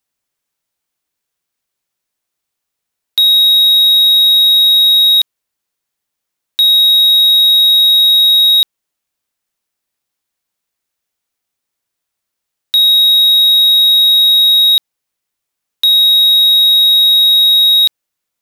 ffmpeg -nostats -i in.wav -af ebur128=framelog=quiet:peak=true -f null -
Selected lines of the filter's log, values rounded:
Integrated loudness:
  I:          -5.5 LUFS
  Threshold: -15.7 LUFS
Loudness range:
  LRA:         6.8 LU
  Threshold: -27.9 LUFS
  LRA low:   -13.4 LUFS
  LRA high:   -6.6 LUFS
True peak:
  Peak:       -3.4 dBFS